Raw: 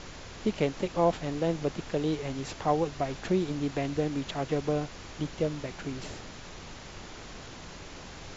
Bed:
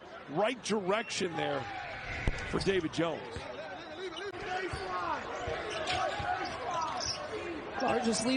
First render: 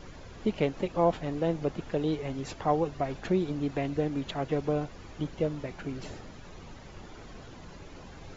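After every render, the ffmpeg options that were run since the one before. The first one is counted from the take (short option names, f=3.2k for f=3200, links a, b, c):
-af "afftdn=nr=10:nf=-45"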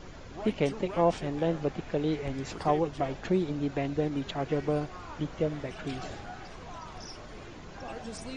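-filter_complex "[1:a]volume=-11dB[a];[0:a][a]amix=inputs=2:normalize=0"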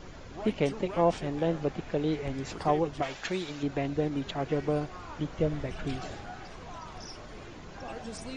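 -filter_complex "[0:a]asettb=1/sr,asplit=3[a][b][c];[a]atrim=end=3.024[d];[b]atrim=start=3.02:end=3.63,asetpts=PTS-STARTPTS,afade=t=in:d=0.004:c=qsin,afade=t=out:st=0.606:d=0.004:c=qsin,tiltshelf=f=880:g=-9[e];[c]atrim=start=3.626[f];[d][e]acrossfade=d=0.004:c1=hsin:c2=qsin[g];[g][f]acrossfade=d=0.004:c1=qsin:c2=hsin,asettb=1/sr,asplit=3[h][i][j];[h]atrim=end=5.384[k];[i]atrim=start=5.38:end=5.96,asetpts=PTS-STARTPTS,afade=t=in:d=0.004:c=qsin,afade=t=out:st=0.576:d=0.004:c=qsin,lowshelf=f=100:g=10.5[l];[j]atrim=start=5.956[m];[k][l]acrossfade=d=0.004:c1=hsin:c2=qsin[n];[n][m]acrossfade=d=0.004:c1=qsin:c2=hsin"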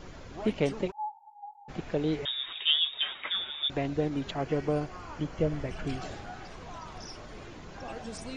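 -filter_complex "[0:a]asplit=3[a][b][c];[a]afade=t=out:st=0.9:d=0.02[d];[b]asuperpass=centerf=850:order=8:qfactor=7.3,afade=t=in:st=0.9:d=0.02,afade=t=out:st=1.68:d=0.02[e];[c]afade=t=in:st=1.68:d=0.02[f];[d][e][f]amix=inputs=3:normalize=0,asettb=1/sr,asplit=3[g][h][i];[g]atrim=end=2.254[j];[h]atrim=start=2.25:end=3.7,asetpts=PTS-STARTPTS,afade=t=in:d=0.004:c=qsin,afade=t=out:st=1.446:d=0.004:c=qsin,lowpass=f=3.2k:t=q:w=0.5098,lowpass=f=3.2k:t=q:w=0.6013,lowpass=f=3.2k:t=q:w=0.9,lowpass=f=3.2k:t=q:w=2.563,afreqshift=-3800[k];[i]atrim=start=3.696[l];[j][k]acrossfade=d=0.004:c1=hsin:c2=qsin[m];[m][l]acrossfade=d=0.004:c1=qsin:c2=hsin,asettb=1/sr,asplit=3[n][o][p];[n]atrim=end=4.304[q];[o]atrim=start=4.3:end=6.01,asetpts=PTS-STARTPTS,afade=t=in:d=0.004:c=qsin,afade=t=out:st=1.706:d=0.004:c=qsin,bandreject=f=3.7k:w=8.8[r];[p]atrim=start=6.006[s];[q][r]acrossfade=d=0.004:c1=hsin:c2=qsin[t];[t][s]acrossfade=d=0.004:c1=qsin:c2=hsin"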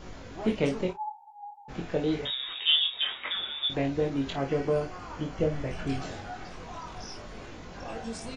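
-filter_complex "[0:a]asplit=2[a][b];[b]adelay=18,volume=-13dB[c];[a][c]amix=inputs=2:normalize=0,aecho=1:1:22|52:0.631|0.299"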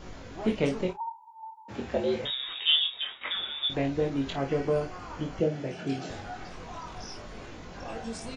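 -filter_complex "[0:a]asettb=1/sr,asplit=3[a][b][c];[a]atrim=end=1.004[d];[b]atrim=start=1:end=2.24,asetpts=PTS-STARTPTS,afade=t=in:d=0.004:c=qsin,afade=t=out:st=1.236:d=0.004:c=qsin,afreqshift=66[e];[c]atrim=start=2.236[f];[d][e]acrossfade=d=0.004:c1=hsin:c2=qsin[g];[g][f]acrossfade=d=0.004:c1=qsin:c2=hsin,asettb=1/sr,asplit=3[h][i][j];[h]atrim=end=5.404[k];[i]atrim=start=5.4:end=6.1,asetpts=PTS-STARTPTS,afade=t=in:d=0.004:c=qsin,afade=t=out:st=0.696:d=0.004:c=qsin,highpass=f=130:w=0.5412,highpass=f=130:w=1.3066,equalizer=f=360:t=q:w=4:g=4,equalizer=f=1.1k:t=q:w=4:g=-10,equalizer=f=2k:t=q:w=4:g=-4,lowpass=f=7.9k:w=0.5412,lowpass=f=7.9k:w=1.3066[l];[j]atrim=start=6.096[m];[k][l]acrossfade=d=0.004:c1=hsin:c2=qsin[n];[n][m]acrossfade=d=0.004:c1=qsin:c2=hsin,asplit=2[o][p];[o]atrim=end=3.21,asetpts=PTS-STARTPTS,afade=t=out:st=2.77:d=0.44:silence=0.334965[q];[p]atrim=start=3.21,asetpts=PTS-STARTPTS,afade=t=in:d=0.004:c=hsin:silence=0.334965[r];[q][r]concat=n=2:v=0:a=1"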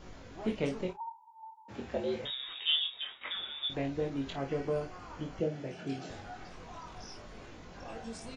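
-af "volume=-6dB"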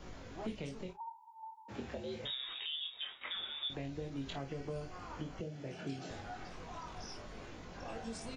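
-filter_complex "[0:a]acrossover=split=170|3000[a][b][c];[b]acompressor=threshold=-39dB:ratio=6[d];[a][d][c]amix=inputs=3:normalize=0,alimiter=level_in=6.5dB:limit=-24dB:level=0:latency=1:release=450,volume=-6.5dB"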